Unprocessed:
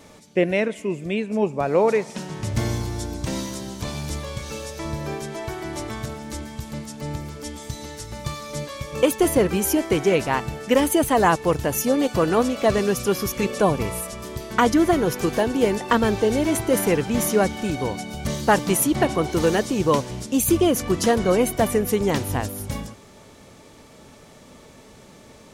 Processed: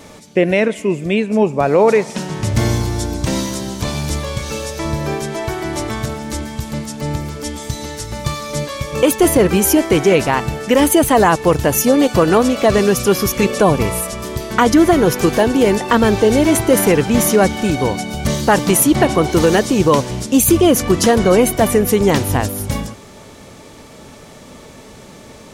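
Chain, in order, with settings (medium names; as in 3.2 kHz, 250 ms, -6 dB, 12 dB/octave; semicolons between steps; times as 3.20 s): peak limiter -11 dBFS, peak gain reduction 4.5 dB; trim +8.5 dB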